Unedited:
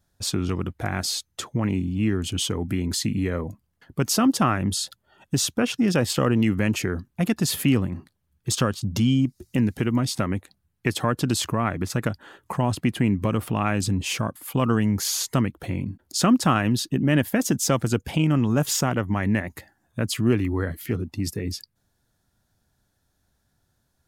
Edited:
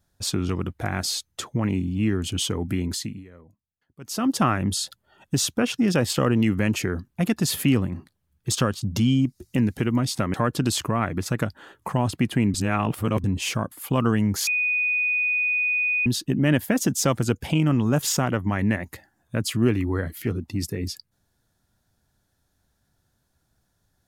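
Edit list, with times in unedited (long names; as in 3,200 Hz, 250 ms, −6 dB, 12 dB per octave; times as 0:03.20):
0:02.82–0:04.42: duck −21 dB, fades 0.42 s
0:10.34–0:10.98: remove
0:13.18–0:13.88: reverse
0:15.11–0:16.70: beep over 2,480 Hz −20 dBFS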